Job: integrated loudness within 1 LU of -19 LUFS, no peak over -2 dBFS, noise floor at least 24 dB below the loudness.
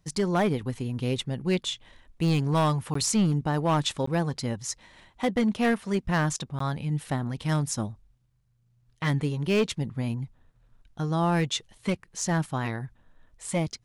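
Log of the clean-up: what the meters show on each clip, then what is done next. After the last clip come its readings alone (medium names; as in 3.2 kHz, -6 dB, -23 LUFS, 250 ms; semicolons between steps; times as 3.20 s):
clipped samples 1.2%; clipping level -18.0 dBFS; dropouts 3; longest dropout 14 ms; loudness -28.0 LUFS; peak level -18.0 dBFS; loudness target -19.0 LUFS
-> clip repair -18 dBFS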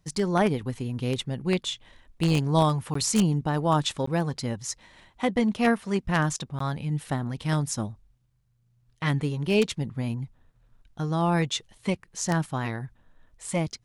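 clipped samples 0.0%; dropouts 3; longest dropout 14 ms
-> interpolate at 2.94/4.06/6.59 s, 14 ms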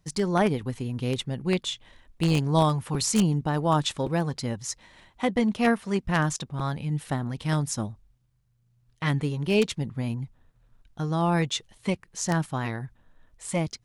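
dropouts 0; loudness -27.0 LUFS; peak level -9.0 dBFS; loudness target -19.0 LUFS
-> trim +8 dB; peak limiter -2 dBFS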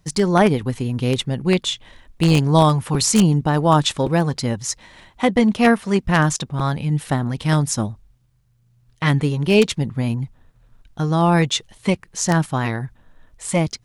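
loudness -19.0 LUFS; peak level -2.0 dBFS; noise floor -58 dBFS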